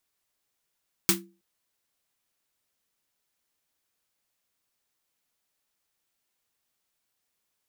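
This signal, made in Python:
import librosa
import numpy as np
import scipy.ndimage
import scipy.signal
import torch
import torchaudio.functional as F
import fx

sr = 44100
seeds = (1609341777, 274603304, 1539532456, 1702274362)

y = fx.drum_snare(sr, seeds[0], length_s=0.32, hz=190.0, second_hz=340.0, noise_db=8.5, noise_from_hz=990.0, decay_s=0.35, noise_decay_s=0.16)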